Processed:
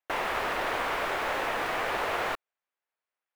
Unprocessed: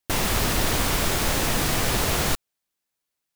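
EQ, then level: three-band isolator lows -23 dB, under 420 Hz, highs -22 dB, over 2.6 kHz; 0.0 dB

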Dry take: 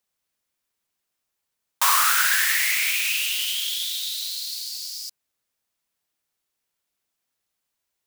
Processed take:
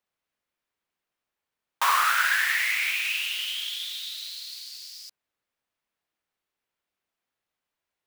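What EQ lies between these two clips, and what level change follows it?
tone controls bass -3 dB, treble -12 dB; 0.0 dB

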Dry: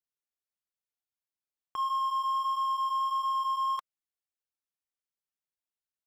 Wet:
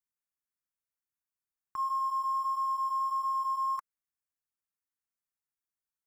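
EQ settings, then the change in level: static phaser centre 1.4 kHz, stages 4; 0.0 dB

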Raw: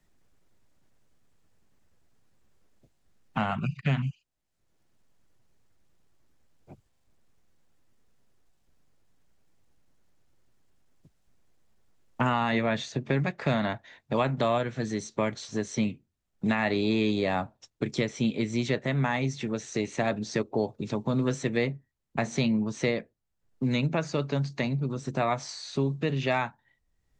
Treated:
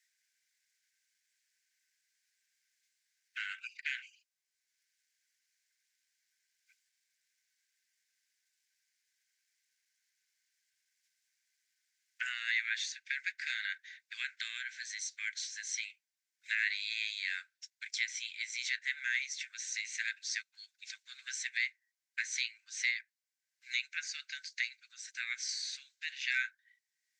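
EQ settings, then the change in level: rippled Chebyshev high-pass 1.5 kHz, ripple 6 dB; +3.5 dB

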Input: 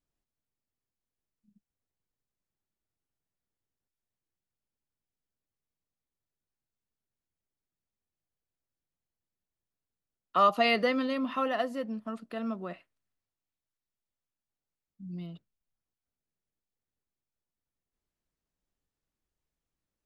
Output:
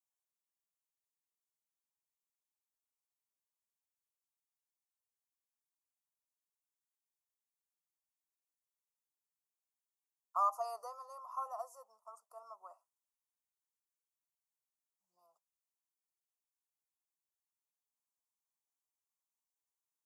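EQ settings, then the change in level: inverse Chebyshev high-pass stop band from 280 Hz, stop band 60 dB; inverse Chebyshev band-stop 1.6–4.1 kHz, stop band 40 dB; 0.0 dB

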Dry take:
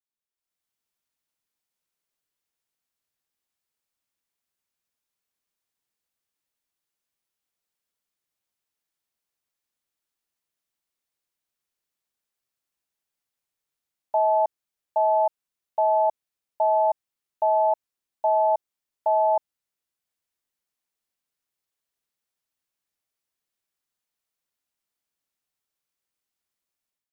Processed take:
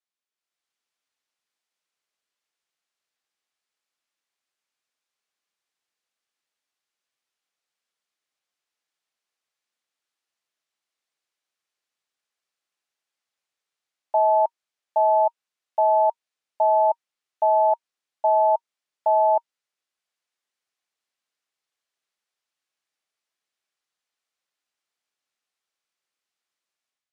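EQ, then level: high-pass 650 Hz 6 dB/octave; distance through air 59 m; band-stop 940 Hz, Q 23; +5.0 dB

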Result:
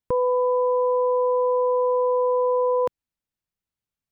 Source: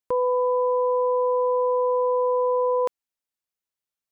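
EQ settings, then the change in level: tone controls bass +14 dB, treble -4 dB; 0.0 dB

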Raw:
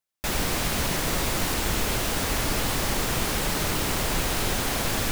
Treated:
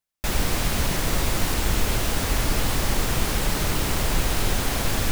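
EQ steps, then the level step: bass shelf 100 Hz +8 dB; 0.0 dB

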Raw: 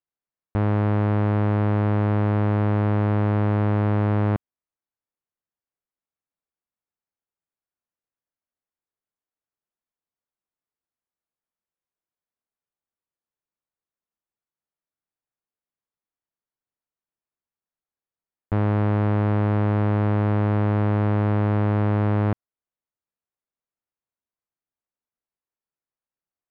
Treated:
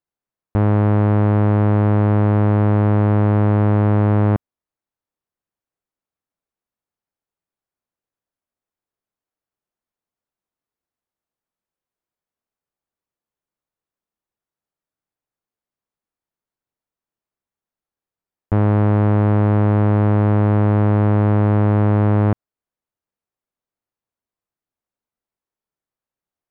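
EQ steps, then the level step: treble shelf 2 kHz -8 dB; +6.0 dB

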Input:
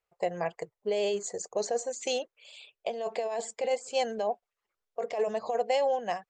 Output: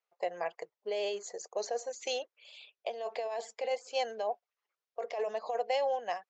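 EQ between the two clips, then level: high-pass 460 Hz 12 dB/octave; steep low-pass 6.6 kHz 48 dB/octave; -2.5 dB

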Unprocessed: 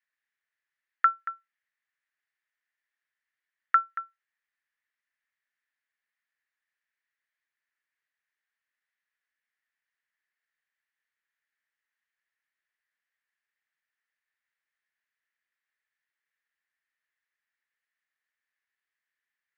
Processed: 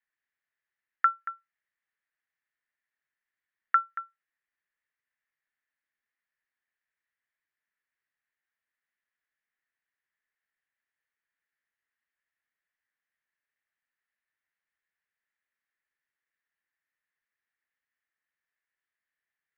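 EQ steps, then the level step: distance through air 240 m; 0.0 dB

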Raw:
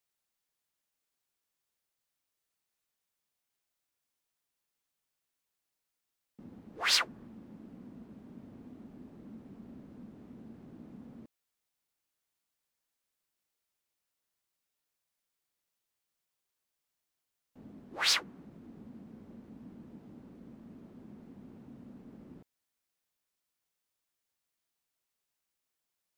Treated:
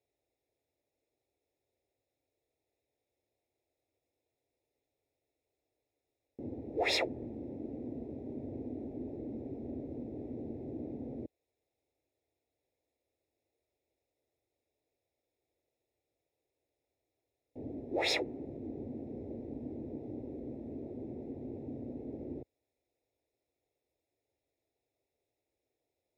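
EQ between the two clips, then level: boxcar filter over 29 samples; high-pass 67 Hz; static phaser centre 460 Hz, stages 4; +16.5 dB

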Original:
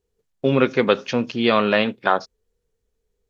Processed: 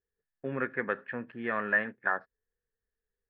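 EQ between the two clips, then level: four-pole ladder low-pass 1.8 kHz, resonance 85%; distance through air 120 m; -4.0 dB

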